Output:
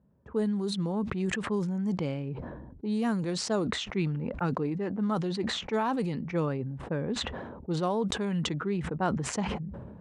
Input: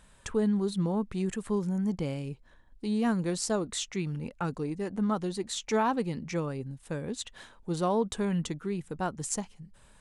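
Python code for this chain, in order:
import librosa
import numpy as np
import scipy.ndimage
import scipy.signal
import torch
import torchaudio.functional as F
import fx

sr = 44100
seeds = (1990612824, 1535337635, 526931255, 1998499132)

y = scipy.signal.sosfilt(scipy.signal.butter(4, 75.0, 'highpass', fs=sr, output='sos'), x)
y = fx.env_lowpass(y, sr, base_hz=340.0, full_db=-24.0)
y = fx.rider(y, sr, range_db=3, speed_s=0.5)
y = fx.peak_eq(y, sr, hz=100.0, db=-5.5, octaves=0.4)
y = fx.sustainer(y, sr, db_per_s=35.0)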